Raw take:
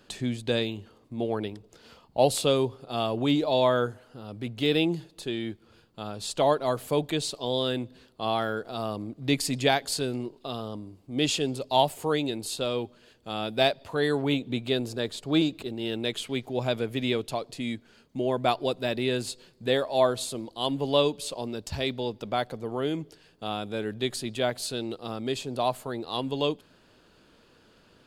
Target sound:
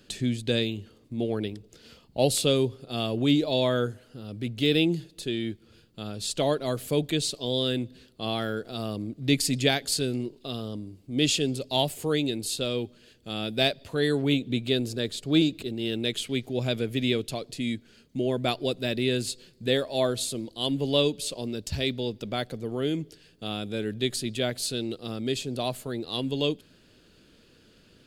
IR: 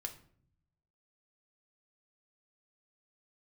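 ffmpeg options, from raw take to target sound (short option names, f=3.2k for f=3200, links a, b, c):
-af "equalizer=f=930:t=o:w=1.3:g=-12.5,volume=3.5dB"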